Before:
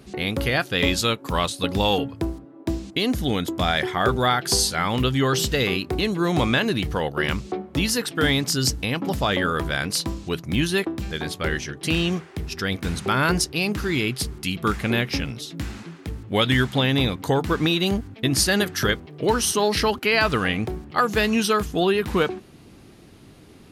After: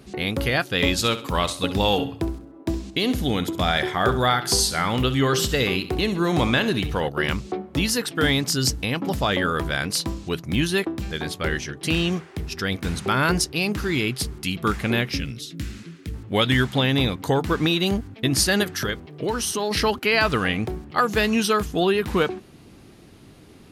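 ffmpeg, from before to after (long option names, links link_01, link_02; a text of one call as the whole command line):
ffmpeg -i in.wav -filter_complex "[0:a]asettb=1/sr,asplit=3[link_01][link_02][link_03];[link_01]atrim=end=0.924[link_04];[link_02]atrim=start=0.92:end=7.09,asetpts=PTS-STARTPTS,afade=type=in:duration=0.004:curve=qsin,afade=type=out:start_time=6.166:duration=0.004:curve=qsin,aecho=1:1:66|132|198|264:0.224|0.0806|0.029|0.0104,atrim=end_sample=272097[link_05];[link_03]atrim=start=7.086[link_06];[link_04][link_05]acrossfade=duration=0.004:curve1=hsin:curve2=qsin[link_07];[link_07][link_06]acrossfade=duration=0.004:curve1=qsin:curve2=hsin,asettb=1/sr,asplit=3[link_08][link_09][link_10];[link_08]atrim=end=15.124[link_11];[link_09]atrim=start=15.12:end=16.14,asetpts=PTS-STARTPTS,afade=type=in:duration=0.004:curve=qsin,afade=type=out:start_time=1.016:duration=0.004:curve=qsin,equalizer=frequency=820:width_type=o:width=1.2:gain=-14.5[link_12];[link_10]atrim=start=16.136[link_13];[link_11][link_12]acrossfade=duration=0.004:curve1=hsin:curve2=qsin[link_14];[link_14][link_13]acrossfade=duration=0.004:curve1=qsin:curve2=hsin,asettb=1/sr,asplit=3[link_15][link_16][link_17];[link_15]atrim=end=18.634[link_18];[link_16]atrim=start=18.63:end=19.71,asetpts=PTS-STARTPTS,afade=type=in:duration=0.004:curve=qsin,afade=type=out:start_time=1.076:duration=0.004:curve=qsin,acompressor=threshold=-24dB:ratio=2:attack=3.2:release=140:knee=1:detection=peak[link_19];[link_17]atrim=start=19.706[link_20];[link_18][link_19]acrossfade=duration=0.004:curve1=hsin:curve2=qsin[link_21];[link_21][link_20]acrossfade=duration=0.004:curve1=qsin:curve2=hsin" out.wav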